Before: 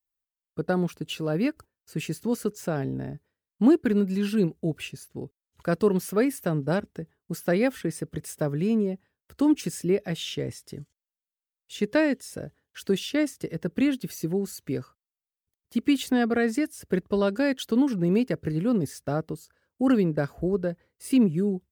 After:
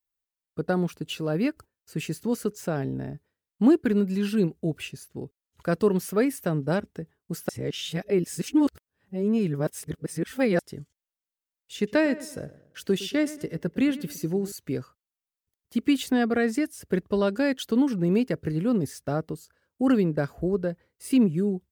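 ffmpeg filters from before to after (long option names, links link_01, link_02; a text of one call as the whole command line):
ffmpeg -i in.wav -filter_complex "[0:a]asettb=1/sr,asplit=3[link_01][link_02][link_03];[link_01]atrim=end=11.764[link_04];[link_02]atrim=start=11.76:end=14.52,asetpts=PTS-STARTPTS,afade=type=in:duration=0.004:curve=qsin,afade=type=out:start_time=2.756:duration=0.004:curve=qsin,asplit=2[link_05][link_06];[link_06]adelay=112,lowpass=frequency=3700:poles=1,volume=-16dB,asplit=2[link_07][link_08];[link_08]adelay=112,lowpass=frequency=3700:poles=1,volume=0.41,asplit=2[link_09][link_10];[link_10]adelay=112,lowpass=frequency=3700:poles=1,volume=0.41,asplit=2[link_11][link_12];[link_12]adelay=112,lowpass=frequency=3700:poles=1,volume=0.41[link_13];[link_05][link_07][link_09][link_11][link_13]amix=inputs=5:normalize=0,atrim=end_sample=121716[link_14];[link_03]atrim=start=14.516[link_15];[link_04][link_14]acrossfade=duration=0.004:curve1=hsin:curve2=qsin[link_16];[link_16][link_15]acrossfade=duration=0.004:curve1=qsin:curve2=hsin,asplit=3[link_17][link_18][link_19];[link_17]atrim=end=7.492[link_20];[link_18]atrim=start=7.488:end=10.592,asetpts=PTS-STARTPTS,areverse[link_21];[link_19]atrim=start=10.588[link_22];[link_20][link_21]acrossfade=duration=0.004:curve1=hsin:curve2=hsin[link_23];[link_23][link_22]acrossfade=duration=0.004:curve1=hsin:curve2=hsin" out.wav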